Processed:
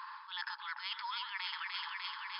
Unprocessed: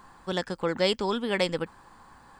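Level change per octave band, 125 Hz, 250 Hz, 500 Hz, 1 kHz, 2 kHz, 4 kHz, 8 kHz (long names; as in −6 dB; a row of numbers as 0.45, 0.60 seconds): below −40 dB, below −40 dB, below −40 dB, −6.0 dB, −5.0 dB, −6.0 dB, below −30 dB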